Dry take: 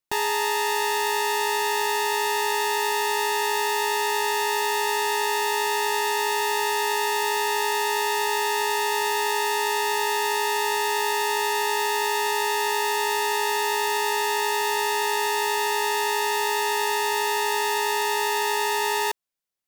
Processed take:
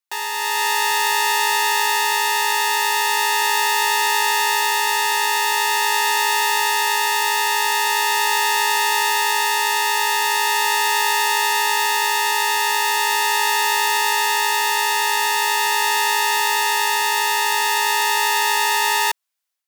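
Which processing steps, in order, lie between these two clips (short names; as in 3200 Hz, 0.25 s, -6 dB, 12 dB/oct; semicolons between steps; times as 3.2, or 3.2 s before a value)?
HPF 830 Hz 12 dB/oct; AGC gain up to 9.5 dB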